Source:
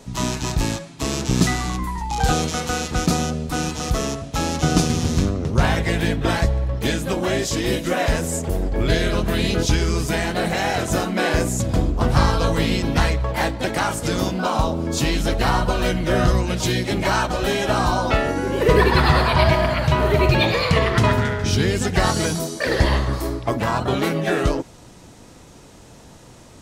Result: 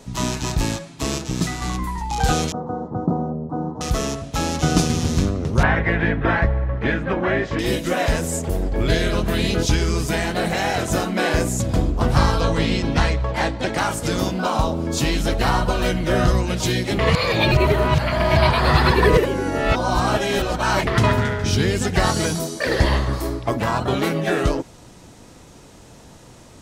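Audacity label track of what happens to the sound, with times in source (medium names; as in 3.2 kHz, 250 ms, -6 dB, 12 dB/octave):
1.180000	1.620000	feedback comb 160 Hz, decay 0.17 s
2.520000	3.810000	elliptic band-pass 100–990 Hz
5.630000	7.590000	resonant low-pass 1.8 kHz, resonance Q 2
12.410000	13.780000	low-pass 7.4 kHz
16.990000	20.870000	reverse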